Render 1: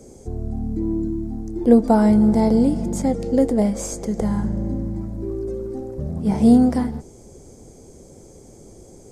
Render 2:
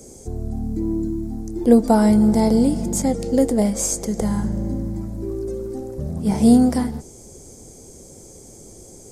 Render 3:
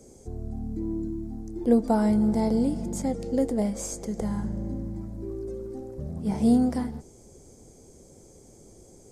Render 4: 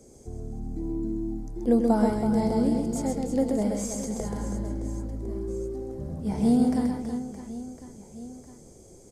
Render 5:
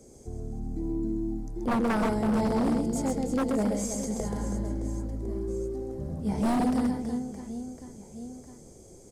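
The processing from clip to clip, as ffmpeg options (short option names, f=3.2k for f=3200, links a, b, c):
-af "highshelf=f=4.4k:g=11.5"
-af "highshelf=f=5.1k:g=-7.5,volume=-7.5dB"
-af "aecho=1:1:130|325|617.5|1056|1714:0.631|0.398|0.251|0.158|0.1,volume=-1.5dB"
-af "aeval=exprs='0.1*(abs(mod(val(0)/0.1+3,4)-2)-1)':c=same"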